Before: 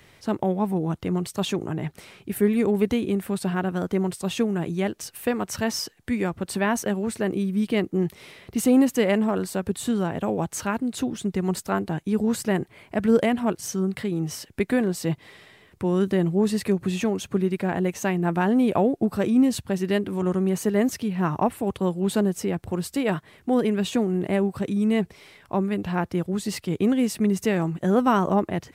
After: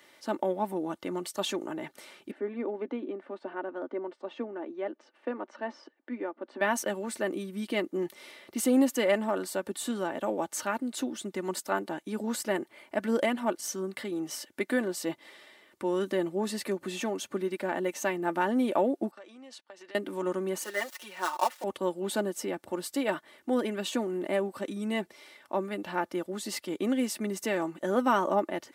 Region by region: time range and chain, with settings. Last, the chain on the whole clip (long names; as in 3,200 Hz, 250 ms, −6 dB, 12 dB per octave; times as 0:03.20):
0:02.31–0:06.61: Chebyshev high-pass filter 250 Hz, order 4 + head-to-tape spacing loss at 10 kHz 45 dB
0:19.11–0:19.95: noise gate −32 dBFS, range −18 dB + band-pass filter 610–5,400 Hz + downward compressor 8 to 1, threshold −41 dBFS
0:20.64–0:21.64: gap after every zero crossing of 0.082 ms + high-pass filter 730 Hz + comb filter 5.5 ms, depth 93%
whole clip: high-pass filter 330 Hz 12 dB per octave; notch filter 2,500 Hz, Q 13; comb filter 3.4 ms, depth 51%; level −3.5 dB